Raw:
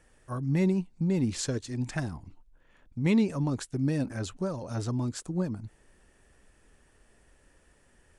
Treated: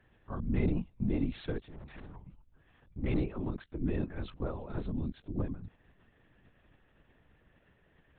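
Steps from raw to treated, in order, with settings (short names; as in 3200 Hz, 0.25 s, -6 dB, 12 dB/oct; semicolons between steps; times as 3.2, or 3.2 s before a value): 1.61–2.16 tube stage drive 41 dB, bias 0.55; 2.98–3.84 ring modulator 74 Hz; LPC vocoder at 8 kHz whisper; 4.86–5.39 bell 1200 Hz -10 dB 1.9 oct; gain -4 dB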